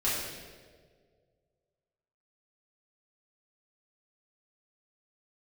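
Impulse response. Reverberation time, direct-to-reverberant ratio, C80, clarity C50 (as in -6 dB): 1.8 s, -10.0 dB, 2.0 dB, -0.5 dB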